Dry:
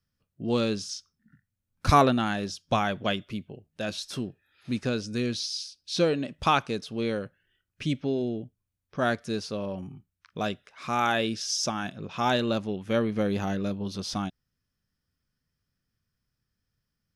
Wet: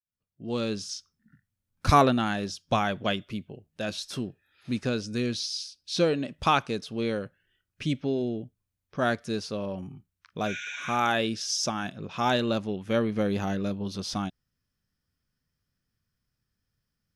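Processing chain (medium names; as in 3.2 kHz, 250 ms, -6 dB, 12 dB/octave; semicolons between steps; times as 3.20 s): fade-in on the opening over 0.92 s; spectral replace 10.49–10.93 s, 1.4–8.2 kHz after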